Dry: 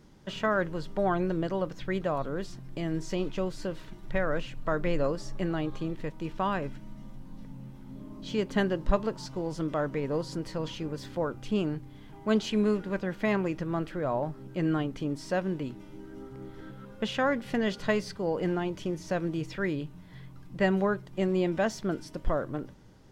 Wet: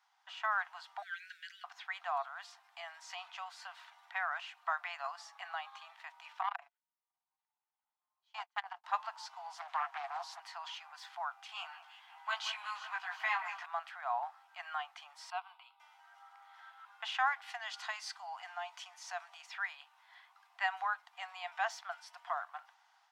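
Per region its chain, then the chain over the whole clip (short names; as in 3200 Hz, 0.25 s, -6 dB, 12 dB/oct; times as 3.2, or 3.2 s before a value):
1.02–1.64 steep high-pass 1500 Hz 96 dB/oct + high shelf 4900 Hz +5.5 dB
6.41–8.84 gate -33 dBFS, range -30 dB + transient shaper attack -2 dB, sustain -9 dB + core saturation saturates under 770 Hz
9.55–10.4 comb 7.3 ms, depth 42% + Doppler distortion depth 0.68 ms
11.47–13.66 HPF 680 Hz 24 dB/oct + doubler 18 ms -2 dB + echo with dull and thin repeats by turns 0.177 s, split 2500 Hz, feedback 71%, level -11 dB
15.3–15.8 fixed phaser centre 1800 Hz, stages 6 + upward expander, over -42 dBFS
17.46–19.5 dynamic EQ 7300 Hz, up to +7 dB, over -56 dBFS, Q 0.75 + compressor 2:1, threshold -31 dBFS
whole clip: Chebyshev high-pass 700 Hz, order 8; high shelf 4900 Hz -11.5 dB; AGC gain up to 6 dB; gain -5.5 dB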